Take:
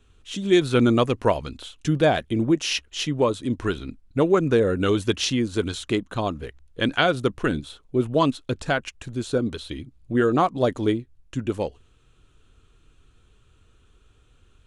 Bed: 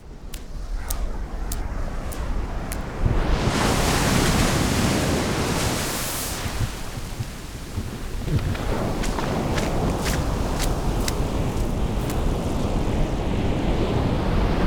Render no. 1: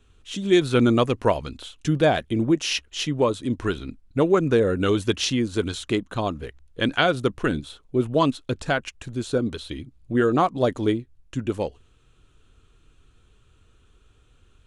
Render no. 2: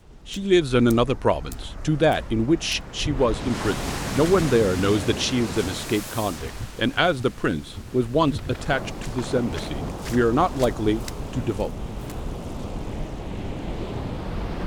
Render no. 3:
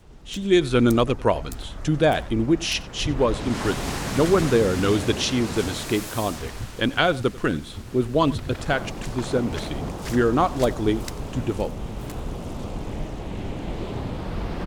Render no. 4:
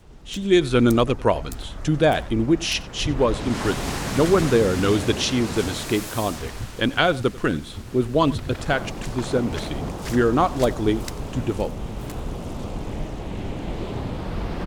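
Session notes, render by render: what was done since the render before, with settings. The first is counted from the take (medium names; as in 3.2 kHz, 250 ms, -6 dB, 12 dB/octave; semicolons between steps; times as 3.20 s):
no audible change
add bed -8 dB
delay 92 ms -20.5 dB
trim +1 dB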